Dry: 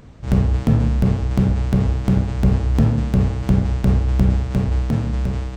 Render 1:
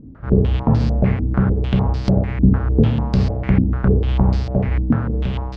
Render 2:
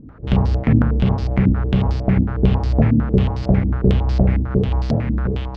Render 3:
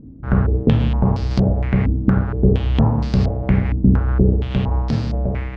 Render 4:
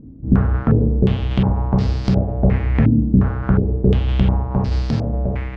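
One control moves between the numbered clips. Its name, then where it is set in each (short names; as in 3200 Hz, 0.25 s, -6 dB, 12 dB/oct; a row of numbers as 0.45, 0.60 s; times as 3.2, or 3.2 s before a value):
stepped low-pass, rate: 6.7, 11, 4.3, 2.8 Hz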